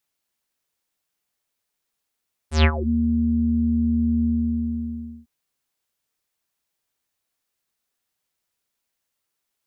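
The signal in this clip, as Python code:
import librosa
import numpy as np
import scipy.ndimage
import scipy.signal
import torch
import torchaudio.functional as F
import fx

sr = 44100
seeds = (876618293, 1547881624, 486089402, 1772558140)

y = fx.sub_voice(sr, note=39, wave='square', cutoff_hz=240.0, q=6.7, env_oct=5.5, env_s=0.35, attack_ms=131.0, decay_s=0.07, sustain_db=-14.0, release_s=1.02, note_s=1.73, slope=24)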